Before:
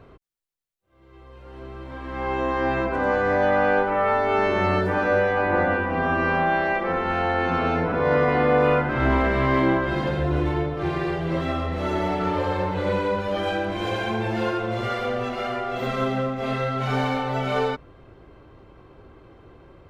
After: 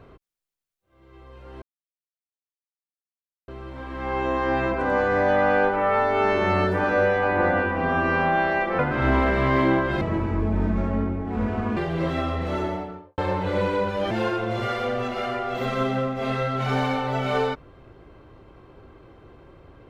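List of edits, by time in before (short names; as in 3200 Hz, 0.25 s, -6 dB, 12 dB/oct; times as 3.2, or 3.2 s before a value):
1.62 insert silence 1.86 s
6.93–8.77 cut
9.99–11.08 speed 62%
11.74–12.49 studio fade out
13.42–14.32 cut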